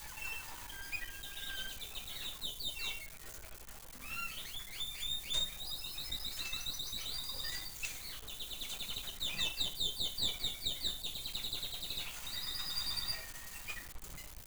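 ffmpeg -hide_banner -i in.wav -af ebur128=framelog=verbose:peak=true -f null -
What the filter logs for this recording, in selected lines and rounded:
Integrated loudness:
  I:         -38.7 LUFS
  Threshold: -48.9 LUFS
Loudness range:
  LRA:         5.3 LU
  Threshold: -58.5 LUFS
  LRA low:   -41.6 LUFS
  LRA high:  -36.3 LUFS
True peak:
  Peak:      -20.8 dBFS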